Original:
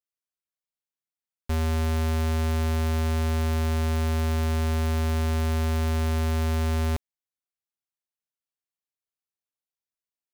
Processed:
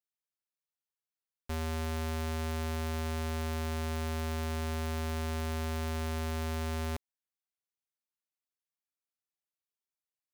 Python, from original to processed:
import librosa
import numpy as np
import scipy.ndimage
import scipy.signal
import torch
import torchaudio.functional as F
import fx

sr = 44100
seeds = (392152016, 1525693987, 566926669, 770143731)

y = fx.low_shelf(x, sr, hz=230.0, db=-6.0)
y = F.gain(torch.from_numpy(y), -5.5).numpy()